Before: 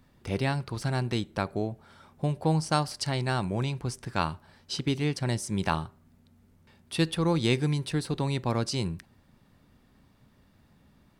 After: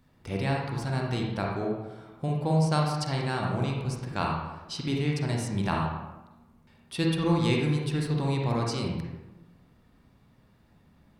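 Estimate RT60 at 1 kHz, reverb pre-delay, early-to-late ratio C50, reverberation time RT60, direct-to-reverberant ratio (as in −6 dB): 1.0 s, 39 ms, 0.5 dB, 1.1 s, −1.5 dB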